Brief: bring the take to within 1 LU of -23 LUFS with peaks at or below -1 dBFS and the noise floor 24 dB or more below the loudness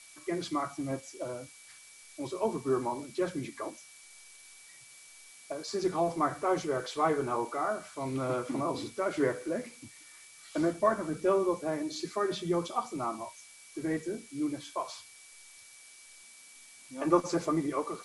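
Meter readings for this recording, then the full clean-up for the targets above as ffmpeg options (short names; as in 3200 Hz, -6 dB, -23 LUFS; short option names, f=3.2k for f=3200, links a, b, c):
steady tone 2300 Hz; tone level -58 dBFS; noise floor -54 dBFS; noise floor target -57 dBFS; loudness -32.5 LUFS; peak -12.0 dBFS; loudness target -23.0 LUFS
-> -af "bandreject=f=2.3k:w=30"
-af "afftdn=nr=6:nf=-54"
-af "volume=9.5dB"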